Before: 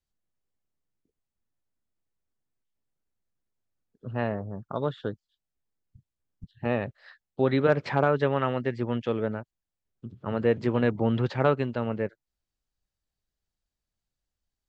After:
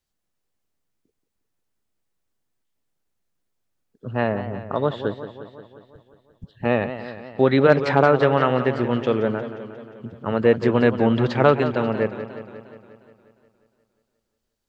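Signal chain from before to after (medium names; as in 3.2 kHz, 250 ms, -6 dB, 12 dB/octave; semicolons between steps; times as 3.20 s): bass shelf 140 Hz -6 dB; modulated delay 178 ms, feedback 63%, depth 123 cents, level -11.5 dB; trim +7.5 dB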